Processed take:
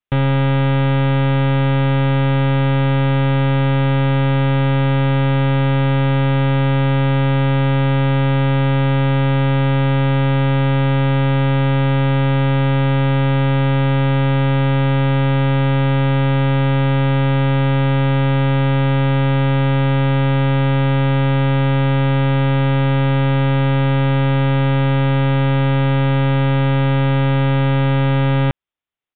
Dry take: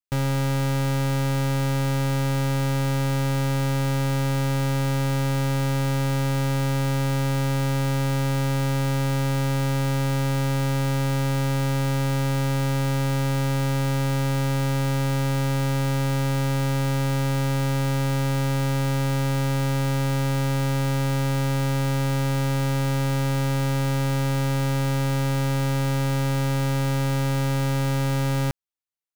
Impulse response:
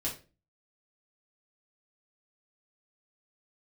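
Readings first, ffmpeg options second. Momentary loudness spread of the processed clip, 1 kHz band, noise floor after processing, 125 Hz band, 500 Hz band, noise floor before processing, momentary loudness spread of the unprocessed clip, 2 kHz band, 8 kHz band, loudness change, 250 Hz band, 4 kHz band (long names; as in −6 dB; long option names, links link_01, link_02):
0 LU, +8.0 dB, −15 dBFS, +8.0 dB, +8.0 dB, −23 dBFS, 0 LU, +8.0 dB, below −40 dB, +8.0 dB, +8.0 dB, +5.0 dB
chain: -af "aresample=8000,aresample=44100,volume=8dB"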